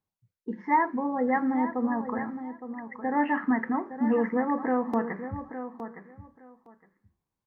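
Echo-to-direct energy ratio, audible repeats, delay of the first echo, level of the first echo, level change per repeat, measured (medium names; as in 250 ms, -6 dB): -10.5 dB, 2, 863 ms, -10.5 dB, -15.5 dB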